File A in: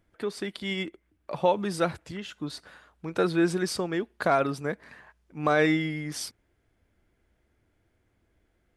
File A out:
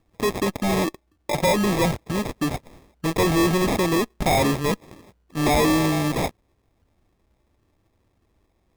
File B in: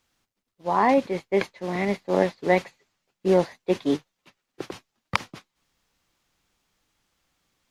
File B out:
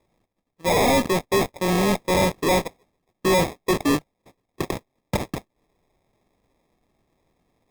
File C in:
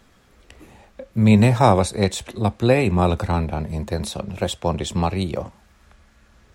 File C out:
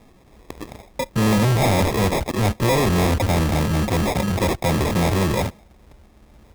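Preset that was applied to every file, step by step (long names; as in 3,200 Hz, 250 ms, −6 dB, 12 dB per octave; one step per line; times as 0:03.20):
in parallel at −12 dB: fuzz pedal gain 39 dB, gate −42 dBFS
on the sum: decimation without filtering 30×
soft clipping −19.5 dBFS
level +4 dB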